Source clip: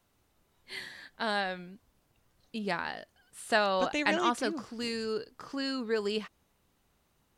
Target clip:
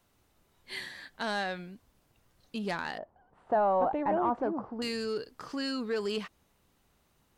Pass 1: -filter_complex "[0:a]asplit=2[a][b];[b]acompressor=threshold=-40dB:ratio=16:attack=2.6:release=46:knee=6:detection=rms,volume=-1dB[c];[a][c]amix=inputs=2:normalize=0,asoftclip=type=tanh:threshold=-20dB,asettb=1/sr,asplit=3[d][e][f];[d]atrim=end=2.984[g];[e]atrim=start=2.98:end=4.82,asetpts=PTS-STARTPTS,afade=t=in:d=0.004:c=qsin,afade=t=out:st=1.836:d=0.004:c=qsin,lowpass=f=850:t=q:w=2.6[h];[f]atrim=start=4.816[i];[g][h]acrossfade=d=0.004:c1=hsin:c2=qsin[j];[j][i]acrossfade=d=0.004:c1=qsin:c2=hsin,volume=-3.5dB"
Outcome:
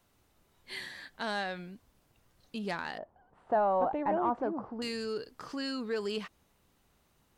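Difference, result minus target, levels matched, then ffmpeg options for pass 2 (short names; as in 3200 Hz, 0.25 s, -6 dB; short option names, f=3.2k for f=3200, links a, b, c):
compressor: peak gain reduction +10.5 dB
-filter_complex "[0:a]asplit=2[a][b];[b]acompressor=threshold=-29dB:ratio=16:attack=2.6:release=46:knee=6:detection=rms,volume=-1dB[c];[a][c]amix=inputs=2:normalize=0,asoftclip=type=tanh:threshold=-20dB,asettb=1/sr,asplit=3[d][e][f];[d]atrim=end=2.984[g];[e]atrim=start=2.98:end=4.82,asetpts=PTS-STARTPTS,afade=t=in:d=0.004:c=qsin,afade=t=out:st=1.836:d=0.004:c=qsin,lowpass=f=850:t=q:w=2.6[h];[f]atrim=start=4.816[i];[g][h]acrossfade=d=0.004:c1=hsin:c2=qsin[j];[j][i]acrossfade=d=0.004:c1=qsin:c2=hsin,volume=-3.5dB"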